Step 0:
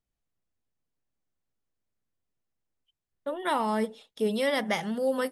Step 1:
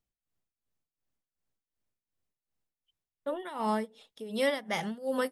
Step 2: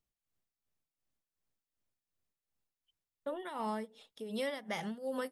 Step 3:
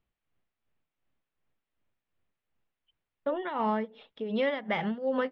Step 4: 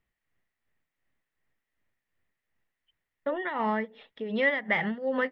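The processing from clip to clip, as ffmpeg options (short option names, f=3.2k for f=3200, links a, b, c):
-af "tremolo=f=2.7:d=0.86"
-af "acompressor=threshold=-33dB:ratio=3,volume=-2dB"
-af "lowpass=f=3.1k:w=0.5412,lowpass=f=3.1k:w=1.3066,volume=8.5dB"
-af "equalizer=f=1.9k:t=o:w=0.32:g=12.5"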